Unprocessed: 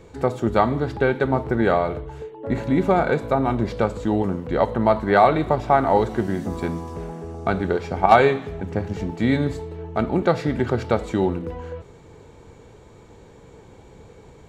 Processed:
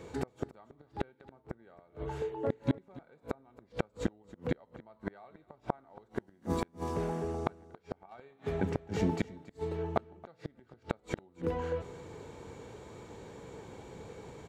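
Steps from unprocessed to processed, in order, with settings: high-pass 120 Hz 6 dB/octave; inverted gate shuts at -16 dBFS, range -39 dB; on a send: delay 277 ms -19.5 dB

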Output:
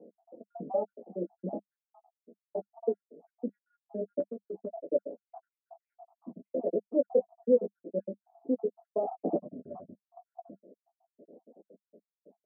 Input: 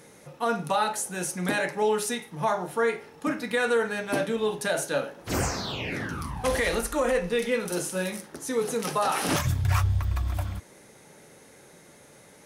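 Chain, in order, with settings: random holes in the spectrogram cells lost 74%; Chebyshev band-pass 200–690 Hz, order 4; 4.20–4.76 s: compression 6:1, threshold -38 dBFS, peak gain reduction 13 dB; doubling 12 ms -8 dB; trim +2.5 dB

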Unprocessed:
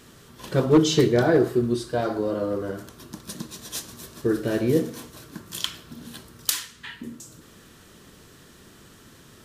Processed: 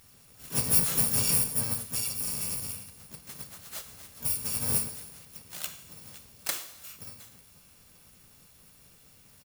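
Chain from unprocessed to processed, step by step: bit-reversed sample order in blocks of 128 samples; gated-style reverb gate 460 ms falling, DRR 10.5 dB; harmony voices -3 st -4 dB, +4 st -6 dB, +12 st -8 dB; trim -9 dB

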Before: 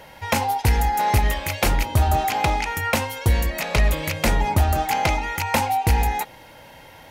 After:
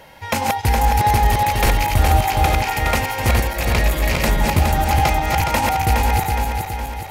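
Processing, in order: backward echo that repeats 208 ms, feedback 72%, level -2 dB

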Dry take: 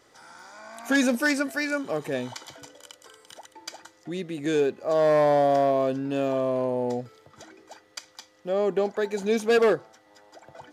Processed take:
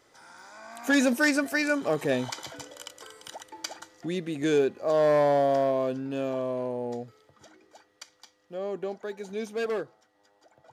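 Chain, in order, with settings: Doppler pass-by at 2.83 s, 7 m/s, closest 9.7 m; trim +4 dB

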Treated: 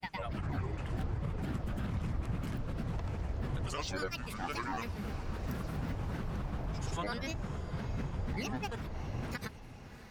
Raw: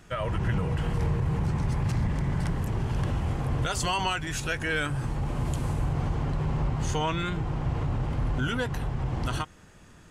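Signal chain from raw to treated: hum notches 50/100/150 Hz; granulator, pitch spread up and down by 12 st; on a send: echo that smears into a reverb 649 ms, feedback 58%, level -13.5 dB; on the sum: trim -7.5 dB

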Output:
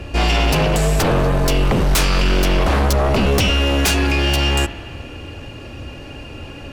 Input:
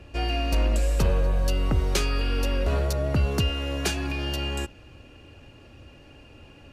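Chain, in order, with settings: sine folder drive 10 dB, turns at -13.5 dBFS; spring tank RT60 2.2 s, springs 46 ms, chirp 25 ms, DRR 13 dB; trim +1.5 dB

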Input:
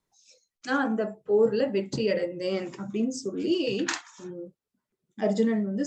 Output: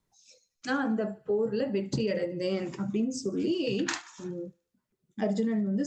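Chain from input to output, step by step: tone controls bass +6 dB, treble 0 dB; compression, threshold -25 dBFS, peak gain reduction 9 dB; thinning echo 74 ms, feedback 58%, high-pass 590 Hz, level -22.5 dB

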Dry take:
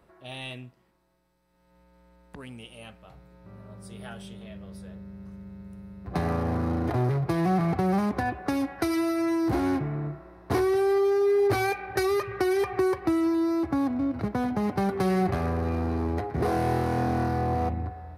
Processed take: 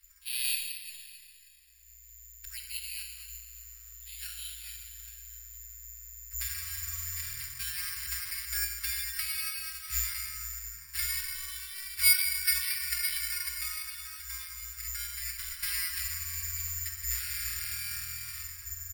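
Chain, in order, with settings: inverse Chebyshev band-stop 170–780 Hz, stop band 60 dB; comb 5.3 ms, depth 97%; plate-style reverb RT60 3.7 s, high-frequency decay 0.55×, DRR 1.5 dB; careless resampling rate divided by 6×, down filtered, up zero stuff; speed mistake 25 fps video run at 24 fps

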